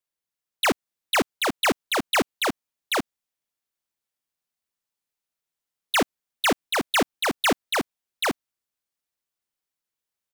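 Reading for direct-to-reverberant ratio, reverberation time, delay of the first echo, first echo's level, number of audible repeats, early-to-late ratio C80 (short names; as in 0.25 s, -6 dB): none, none, 0.785 s, -3.0 dB, 1, none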